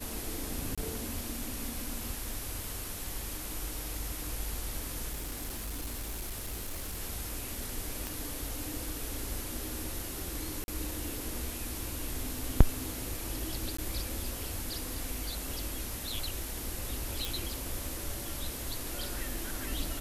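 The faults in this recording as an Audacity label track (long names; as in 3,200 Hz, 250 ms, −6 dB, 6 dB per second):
0.750000	0.780000	drop-out 26 ms
5.120000	6.990000	clipping −33.5 dBFS
8.070000	8.070000	click
10.640000	10.680000	drop-out 41 ms
13.770000	13.780000	drop-out 14 ms
17.250000	17.250000	click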